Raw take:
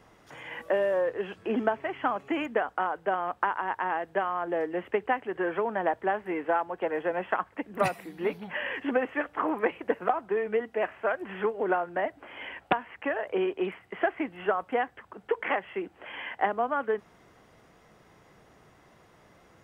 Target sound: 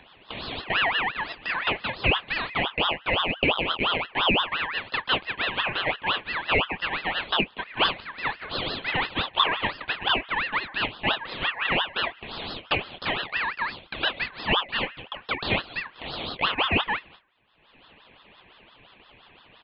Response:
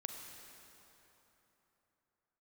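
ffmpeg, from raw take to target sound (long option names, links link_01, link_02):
-filter_complex "[0:a]aresample=11025,asoftclip=type=tanh:threshold=-20.5dB,aresample=44100,agate=range=-31dB:threshold=-52dB:ratio=16:detection=peak,equalizer=frequency=1200:width_type=o:width=0.59:gain=12.5,bandreject=frequency=239.4:width_type=h:width=4,bandreject=frequency=478.8:width_type=h:width=4,bandreject=frequency=718.2:width_type=h:width=4,bandreject=frequency=957.6:width_type=h:width=4,acompressor=mode=upward:threshold=-29dB:ratio=2.5,afftfilt=real='re*between(b*sr/4096,190,3000)':imag='im*between(b*sr/4096,190,3000)':win_size=4096:overlap=0.75,adynamicequalizer=threshold=0.02:dfrequency=1600:dqfactor=2.1:tfrequency=1600:tqfactor=2.1:attack=5:release=100:ratio=0.375:range=2:mode=cutabove:tftype=bell,asplit=2[link_01][link_02];[link_02]aecho=0:1:13|25:0.316|0.473[link_03];[link_01][link_03]amix=inputs=2:normalize=0,aeval=exprs='val(0)*sin(2*PI*1800*n/s+1800*0.3/5.8*sin(2*PI*5.8*n/s))':channel_layout=same,volume=2.5dB"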